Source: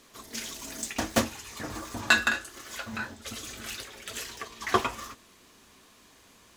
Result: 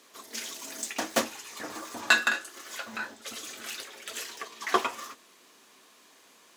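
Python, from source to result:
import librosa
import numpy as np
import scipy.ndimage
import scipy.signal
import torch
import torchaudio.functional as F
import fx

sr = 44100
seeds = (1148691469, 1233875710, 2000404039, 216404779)

y = scipy.signal.sosfilt(scipy.signal.butter(2, 310.0, 'highpass', fs=sr, output='sos'), x)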